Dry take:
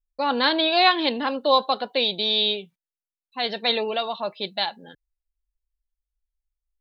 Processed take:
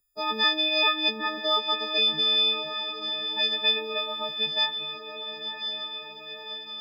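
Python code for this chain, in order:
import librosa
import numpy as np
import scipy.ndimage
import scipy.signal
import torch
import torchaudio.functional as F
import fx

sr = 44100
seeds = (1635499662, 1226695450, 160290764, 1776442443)

p1 = fx.freq_snap(x, sr, grid_st=6)
p2 = p1 + fx.echo_diffused(p1, sr, ms=1084, feedback_pct=52, wet_db=-11.5, dry=0)
p3 = fx.hpss(p2, sr, part='percussive', gain_db=6)
p4 = fx.doubler(p3, sr, ms=12.0, db=-13)
p5 = fx.band_squash(p4, sr, depth_pct=40)
y = p5 * 10.0 ** (-8.5 / 20.0)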